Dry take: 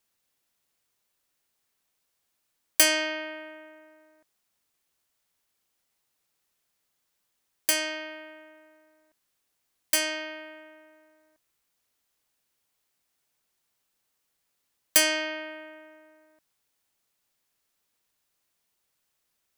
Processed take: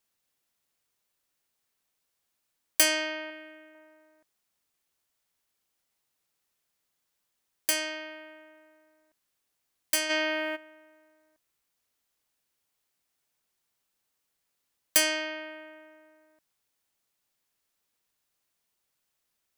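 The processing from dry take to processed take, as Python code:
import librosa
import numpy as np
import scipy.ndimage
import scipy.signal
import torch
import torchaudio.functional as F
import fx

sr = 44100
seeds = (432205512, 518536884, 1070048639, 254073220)

y = fx.peak_eq(x, sr, hz=890.0, db=-9.0, octaves=0.82, at=(3.3, 3.75))
y = fx.env_flatten(y, sr, amount_pct=50, at=(10.09, 10.55), fade=0.02)
y = y * 10.0 ** (-2.5 / 20.0)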